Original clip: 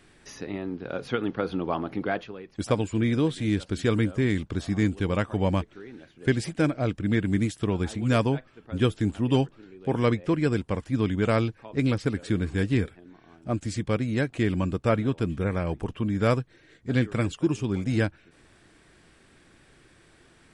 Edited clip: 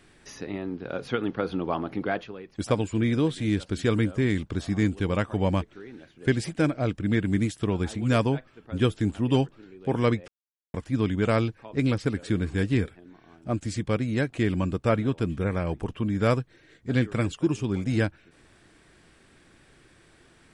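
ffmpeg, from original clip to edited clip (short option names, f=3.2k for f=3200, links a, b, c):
-filter_complex "[0:a]asplit=3[a][b][c];[a]atrim=end=10.28,asetpts=PTS-STARTPTS,afade=t=out:st=10.276:d=0.004:c=hsin[d];[b]atrim=start=10.28:end=10.74,asetpts=PTS-STARTPTS,volume=0[e];[c]atrim=start=10.74,asetpts=PTS-STARTPTS,afade=t=in:d=0.004:c=hsin[f];[d][e][f]concat=n=3:v=0:a=1"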